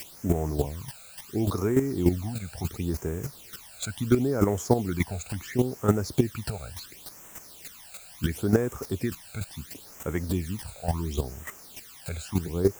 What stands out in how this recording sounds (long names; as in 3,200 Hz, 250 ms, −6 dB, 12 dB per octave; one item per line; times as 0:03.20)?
a quantiser's noise floor 8 bits, dither triangular
phaser sweep stages 12, 0.72 Hz, lowest notch 310–4,400 Hz
chopped level 3.4 Hz, depth 65%, duty 10%